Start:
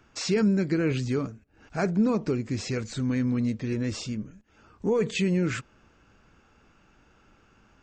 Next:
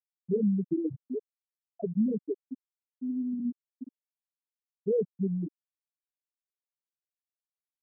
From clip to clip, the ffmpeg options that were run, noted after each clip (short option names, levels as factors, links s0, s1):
-af "afftfilt=real='re*gte(hypot(re,im),0.501)':imag='im*gte(hypot(re,im),0.501)':win_size=1024:overlap=0.75,lowshelf=f=140:g=-9.5"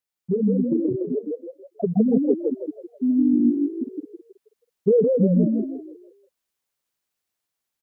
-filter_complex "[0:a]acompressor=threshold=0.0501:ratio=6,asplit=2[s0][s1];[s1]asplit=5[s2][s3][s4][s5][s6];[s2]adelay=161,afreqshift=44,volume=0.668[s7];[s3]adelay=322,afreqshift=88,volume=0.24[s8];[s4]adelay=483,afreqshift=132,volume=0.0871[s9];[s5]adelay=644,afreqshift=176,volume=0.0313[s10];[s6]adelay=805,afreqshift=220,volume=0.0112[s11];[s7][s8][s9][s10][s11]amix=inputs=5:normalize=0[s12];[s0][s12]amix=inputs=2:normalize=0,dynaudnorm=f=770:g=5:m=1.78,volume=2.37"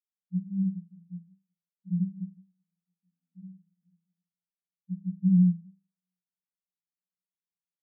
-af "asuperpass=centerf=180:order=12:qfactor=7.1"